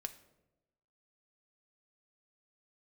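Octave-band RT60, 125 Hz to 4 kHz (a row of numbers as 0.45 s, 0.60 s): 1.2 s, 1.1 s, 1.1 s, 0.85 s, 0.65 s, 0.55 s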